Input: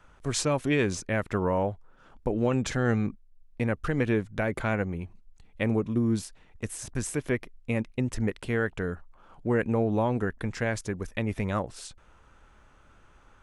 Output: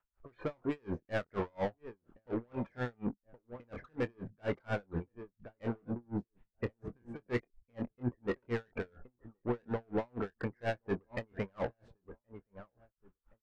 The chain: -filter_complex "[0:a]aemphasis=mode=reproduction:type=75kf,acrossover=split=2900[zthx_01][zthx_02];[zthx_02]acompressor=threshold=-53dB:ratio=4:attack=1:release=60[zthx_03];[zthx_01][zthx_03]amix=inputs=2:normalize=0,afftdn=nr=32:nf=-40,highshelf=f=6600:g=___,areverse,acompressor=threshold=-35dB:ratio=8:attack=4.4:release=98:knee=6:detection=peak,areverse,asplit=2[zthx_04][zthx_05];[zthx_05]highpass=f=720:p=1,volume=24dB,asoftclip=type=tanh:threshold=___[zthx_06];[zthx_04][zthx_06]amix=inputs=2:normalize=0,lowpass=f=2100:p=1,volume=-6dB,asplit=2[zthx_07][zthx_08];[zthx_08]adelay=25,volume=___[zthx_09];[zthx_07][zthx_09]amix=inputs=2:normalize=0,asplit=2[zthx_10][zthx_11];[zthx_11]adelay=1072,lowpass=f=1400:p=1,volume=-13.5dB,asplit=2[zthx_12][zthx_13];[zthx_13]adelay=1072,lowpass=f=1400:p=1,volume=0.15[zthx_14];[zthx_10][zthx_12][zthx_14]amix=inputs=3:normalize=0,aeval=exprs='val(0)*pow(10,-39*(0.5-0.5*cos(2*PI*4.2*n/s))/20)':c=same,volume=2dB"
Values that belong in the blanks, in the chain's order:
-3.5, -24.5dB, -8.5dB